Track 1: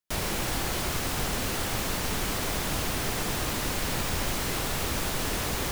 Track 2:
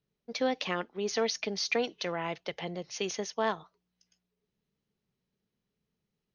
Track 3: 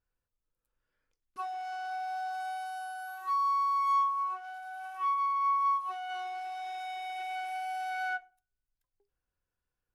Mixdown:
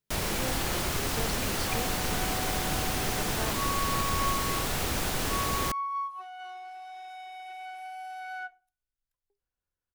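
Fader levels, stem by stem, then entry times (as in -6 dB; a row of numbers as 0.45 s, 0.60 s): -0.5 dB, -9.0 dB, -4.5 dB; 0.00 s, 0.00 s, 0.30 s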